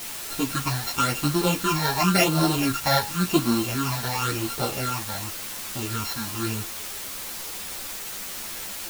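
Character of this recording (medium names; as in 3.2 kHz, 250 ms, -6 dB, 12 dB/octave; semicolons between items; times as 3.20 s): a buzz of ramps at a fixed pitch in blocks of 32 samples; phasing stages 8, 0.93 Hz, lowest notch 350–2300 Hz; a quantiser's noise floor 6-bit, dither triangular; a shimmering, thickened sound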